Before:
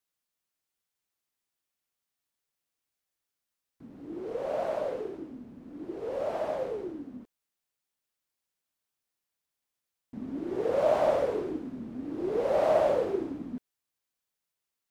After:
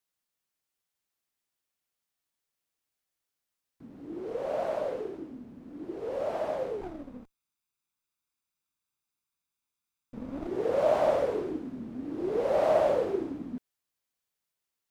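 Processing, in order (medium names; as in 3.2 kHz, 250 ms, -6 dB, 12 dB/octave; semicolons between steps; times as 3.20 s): 6.81–10.47 s: comb filter that takes the minimum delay 0.81 ms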